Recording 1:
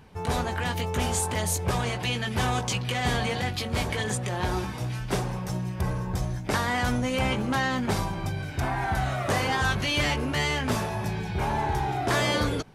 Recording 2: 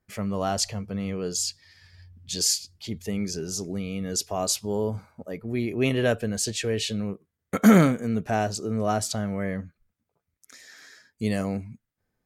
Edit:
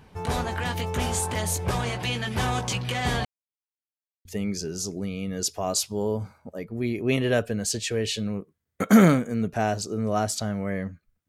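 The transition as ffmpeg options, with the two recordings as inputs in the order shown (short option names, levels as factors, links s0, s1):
-filter_complex "[0:a]apad=whole_dur=11.28,atrim=end=11.28,asplit=2[s0][s1];[s0]atrim=end=3.25,asetpts=PTS-STARTPTS,afade=t=out:st=3.246:d=0.004:c=hsin[s2];[s1]atrim=start=3.25:end=4.25,asetpts=PTS-STARTPTS,volume=0[s3];[1:a]atrim=start=2.98:end=10.01,asetpts=PTS-STARTPTS,afade=t=in:d=0.004:c=hsin[s4];[s2][s3][s4]concat=n=3:v=0:a=1"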